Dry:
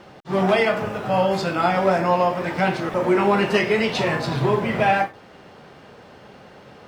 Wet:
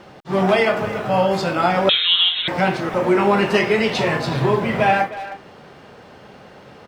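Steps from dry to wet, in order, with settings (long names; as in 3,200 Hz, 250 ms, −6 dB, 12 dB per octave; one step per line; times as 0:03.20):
far-end echo of a speakerphone 310 ms, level −13 dB
0:01.89–0:02.48: voice inversion scrambler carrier 3,900 Hz
level +2 dB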